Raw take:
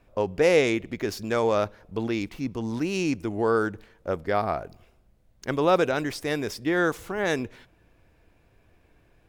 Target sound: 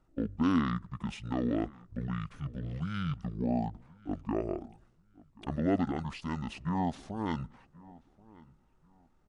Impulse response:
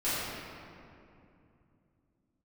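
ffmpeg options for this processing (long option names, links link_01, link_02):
-filter_complex "[0:a]asetrate=23361,aresample=44100,atempo=1.88775,asplit=2[link_01][link_02];[link_02]adelay=1082,lowpass=frequency=1900:poles=1,volume=-22dB,asplit=2[link_03][link_04];[link_04]adelay=1082,lowpass=frequency=1900:poles=1,volume=0.25[link_05];[link_03][link_05]amix=inputs=2:normalize=0[link_06];[link_01][link_06]amix=inputs=2:normalize=0,volume=-7.5dB"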